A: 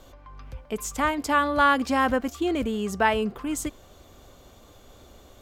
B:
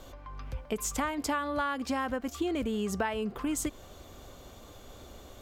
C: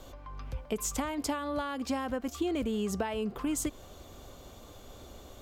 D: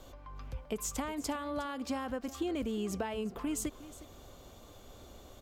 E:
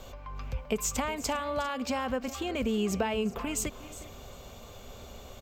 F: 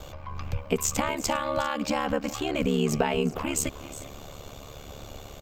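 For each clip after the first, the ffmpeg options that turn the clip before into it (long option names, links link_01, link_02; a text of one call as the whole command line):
ffmpeg -i in.wav -af "acompressor=threshold=-29dB:ratio=12,volume=1.5dB" out.wav
ffmpeg -i in.wav -filter_complex "[0:a]equalizer=frequency=1800:width=1.5:gain=-2.5,acrossover=split=890|2100[link_01][link_02][link_03];[link_02]alimiter=level_in=13.5dB:limit=-24dB:level=0:latency=1,volume=-13.5dB[link_04];[link_01][link_04][link_03]amix=inputs=3:normalize=0" out.wav
ffmpeg -i in.wav -af "aecho=1:1:361:0.15,volume=-3.5dB" out.wav
ffmpeg -i in.wav -af "superequalizer=6b=0.398:12b=1.58:16b=0.398,aecho=1:1:401:0.112,volume=6.5dB" out.wav
ffmpeg -i in.wav -af "aeval=exprs='val(0)*sin(2*PI*36*n/s)':channel_layout=same,volume=7dB" out.wav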